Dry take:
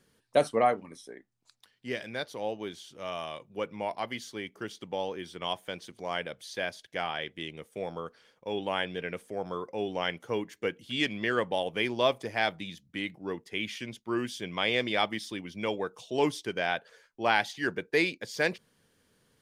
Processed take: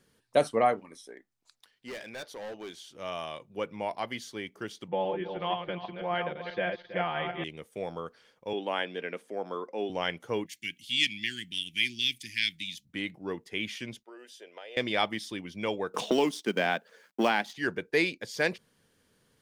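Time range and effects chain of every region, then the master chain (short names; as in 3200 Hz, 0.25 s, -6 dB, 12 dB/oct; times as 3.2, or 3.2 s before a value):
0.79–2.94 bell 110 Hz -9 dB 2.1 oct + hard clip -36.5 dBFS
4.88–7.44 regenerating reverse delay 0.162 s, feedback 40%, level -5.5 dB + Bessel low-pass 2200 Hz, order 6 + comb 5.7 ms, depth 98%
8.53–9.9 HPF 210 Hz 24 dB/oct + high shelf 7200 Hz -9 dB
10.46–12.85 inverse Chebyshev band-stop 510–1200 Hz, stop band 50 dB + tilt shelf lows -8 dB, about 1100 Hz
14.03–14.77 notch comb 1100 Hz + compressor 10:1, threshold -33 dBFS + ladder high-pass 410 Hz, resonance 45%
15.94–17.56 G.711 law mismatch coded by A + resonant low shelf 140 Hz -12 dB, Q 3 + three-band squash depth 100%
whole clip: dry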